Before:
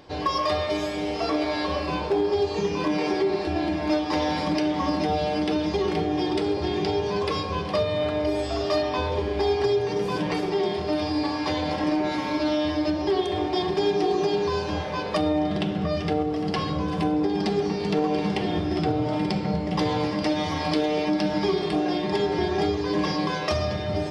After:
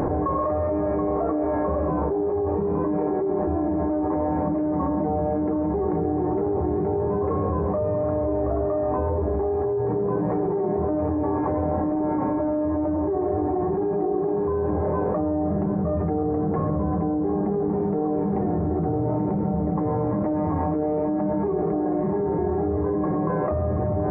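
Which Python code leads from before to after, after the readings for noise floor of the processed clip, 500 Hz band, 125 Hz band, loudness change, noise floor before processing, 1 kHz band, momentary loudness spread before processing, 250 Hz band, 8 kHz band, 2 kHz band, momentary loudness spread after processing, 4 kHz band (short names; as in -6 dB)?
-24 dBFS, +1.5 dB, +4.0 dB, +1.0 dB, -30 dBFS, -0.5 dB, 3 LU, +1.5 dB, under -30 dB, -13.0 dB, 0 LU, under -40 dB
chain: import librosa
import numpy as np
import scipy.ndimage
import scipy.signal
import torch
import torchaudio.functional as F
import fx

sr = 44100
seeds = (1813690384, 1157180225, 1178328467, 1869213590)

y = scipy.ndimage.gaussian_filter1d(x, 7.8, mode='constant')
y = fx.echo_split(y, sr, split_hz=360.0, low_ms=83, high_ms=727, feedback_pct=52, wet_db=-11.5)
y = fx.env_flatten(y, sr, amount_pct=100)
y = F.gain(torch.from_numpy(y), -3.0).numpy()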